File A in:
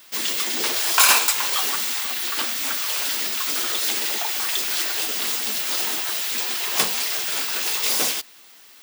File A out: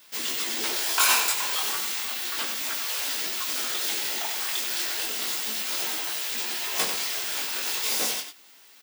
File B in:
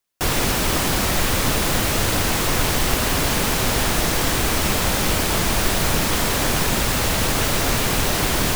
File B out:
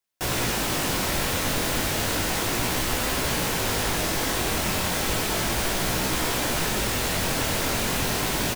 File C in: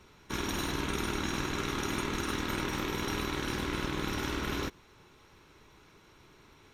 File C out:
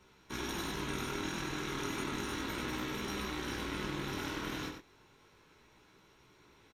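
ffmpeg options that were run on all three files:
-filter_complex "[0:a]lowshelf=f=85:g=-6,bandreject=f=1200:w=21,flanger=delay=15.5:depth=7.6:speed=0.33,acontrast=71,asplit=2[s0][s1];[s1]adelay=93.29,volume=0.447,highshelf=f=4000:g=-2.1[s2];[s0][s2]amix=inputs=2:normalize=0,volume=0.376"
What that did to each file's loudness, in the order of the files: -5.0 LU, -5.0 LU, -4.5 LU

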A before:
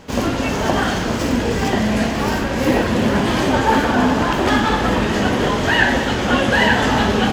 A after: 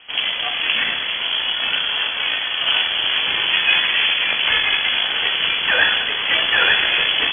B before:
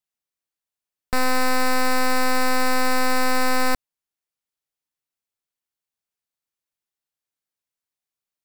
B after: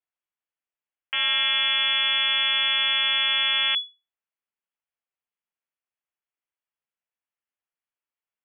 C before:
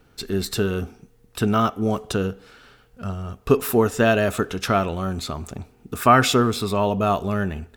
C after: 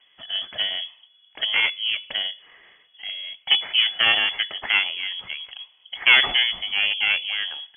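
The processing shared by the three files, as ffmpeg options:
-af "equalizer=f=180:t=o:w=1.5:g=-7,aeval=exprs='0.891*(cos(1*acos(clip(val(0)/0.891,-1,1)))-cos(1*PI/2))+0.141*(cos(6*acos(clip(val(0)/0.891,-1,1)))-cos(6*PI/2))':c=same,lowpass=f=2900:t=q:w=0.5098,lowpass=f=2900:t=q:w=0.6013,lowpass=f=2900:t=q:w=0.9,lowpass=f=2900:t=q:w=2.563,afreqshift=-3400,volume=0.891"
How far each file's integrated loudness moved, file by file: +1.0 LU, +2.0 LU, +1.5 LU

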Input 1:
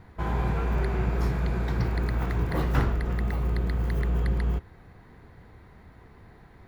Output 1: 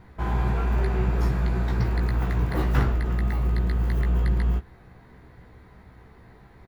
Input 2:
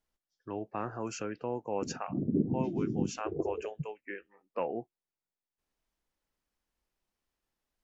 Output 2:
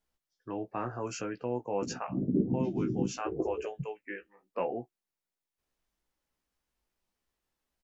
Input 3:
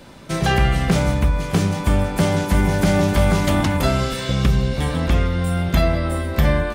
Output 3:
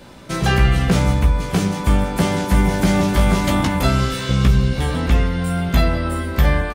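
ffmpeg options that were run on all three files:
-filter_complex "[0:a]asplit=2[s0][s1];[s1]adelay=16,volume=0.531[s2];[s0][s2]amix=inputs=2:normalize=0"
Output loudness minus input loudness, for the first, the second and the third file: +2.5 LU, +1.0 LU, +1.0 LU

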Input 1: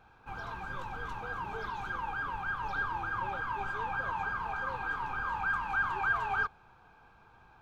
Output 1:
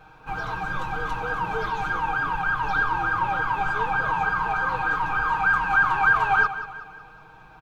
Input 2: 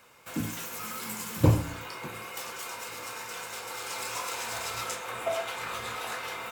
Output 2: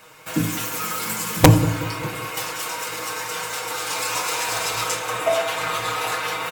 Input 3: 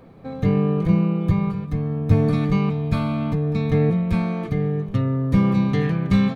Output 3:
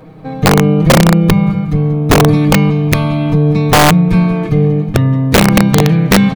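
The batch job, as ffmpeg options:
-filter_complex "[0:a]aecho=1:1:6.4:0.73,aecho=1:1:185|370|555|740|925:0.224|0.105|0.0495|0.0232|0.0109,asplit=2[s0][s1];[s1]acontrast=65,volume=1.19[s2];[s0][s2]amix=inputs=2:normalize=0,aeval=exprs='(mod(0.891*val(0)+1,2)-1)/0.891':c=same,volume=0.75"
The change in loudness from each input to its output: +11.0 LU, +10.5 LU, +10.5 LU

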